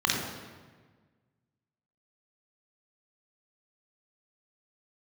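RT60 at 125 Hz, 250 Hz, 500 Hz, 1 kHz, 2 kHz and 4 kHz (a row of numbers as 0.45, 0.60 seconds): 1.9, 1.7, 1.5, 1.4, 1.3, 1.1 seconds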